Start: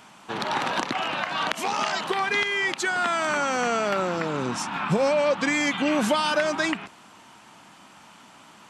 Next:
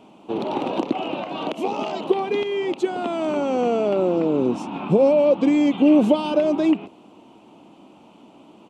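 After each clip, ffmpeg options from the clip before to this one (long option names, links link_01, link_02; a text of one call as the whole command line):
ffmpeg -i in.wav -af "firequalizer=gain_entry='entry(130,0);entry(310,12);entry(1700,-20);entry(2600,-3);entry(5000,-14)':delay=0.05:min_phase=1" out.wav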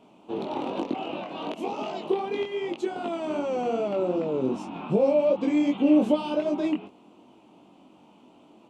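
ffmpeg -i in.wav -af "flanger=delay=20:depth=3.4:speed=2.6,volume=-3dB" out.wav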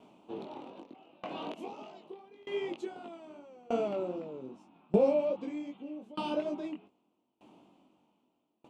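ffmpeg -i in.wav -af "aeval=exprs='val(0)*pow(10,-28*if(lt(mod(0.81*n/s,1),2*abs(0.81)/1000),1-mod(0.81*n/s,1)/(2*abs(0.81)/1000),(mod(0.81*n/s,1)-2*abs(0.81)/1000)/(1-2*abs(0.81)/1000))/20)':channel_layout=same,volume=-1.5dB" out.wav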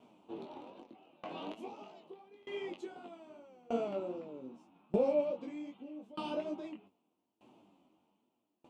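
ffmpeg -i in.wav -af "flanger=delay=7.8:depth=5.2:regen=48:speed=1.2:shape=triangular" out.wav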